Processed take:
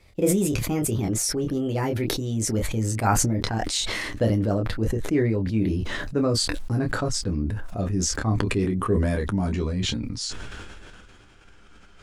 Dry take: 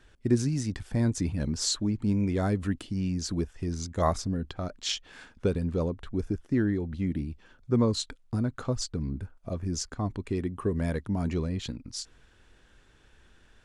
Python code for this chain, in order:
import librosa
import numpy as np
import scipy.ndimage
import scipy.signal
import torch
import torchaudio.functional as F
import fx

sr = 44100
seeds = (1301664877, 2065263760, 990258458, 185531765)

p1 = fx.speed_glide(x, sr, from_pct=138, to_pct=89)
p2 = fx.rider(p1, sr, range_db=4, speed_s=0.5)
p3 = p1 + (p2 * 10.0 ** (-2.0 / 20.0))
p4 = fx.room_early_taps(p3, sr, ms=(10, 27), db=(-6.5, -6.5))
p5 = fx.sustainer(p4, sr, db_per_s=22.0)
y = p5 * 10.0 ** (-3.5 / 20.0)